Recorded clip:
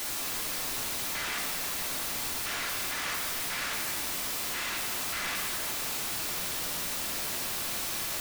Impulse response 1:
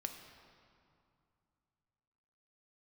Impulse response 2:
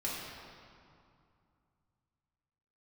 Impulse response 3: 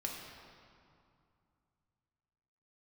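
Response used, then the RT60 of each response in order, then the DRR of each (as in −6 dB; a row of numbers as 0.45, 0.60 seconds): 3; 2.5, 2.4, 2.4 seconds; 4.5, −7.0, −1.5 decibels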